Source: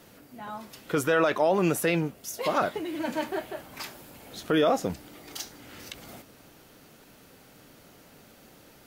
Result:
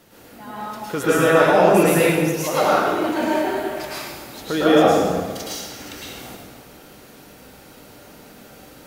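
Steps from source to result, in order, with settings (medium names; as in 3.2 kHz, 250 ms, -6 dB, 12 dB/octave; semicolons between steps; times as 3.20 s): plate-style reverb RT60 1.5 s, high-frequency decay 0.8×, pre-delay 95 ms, DRR -9 dB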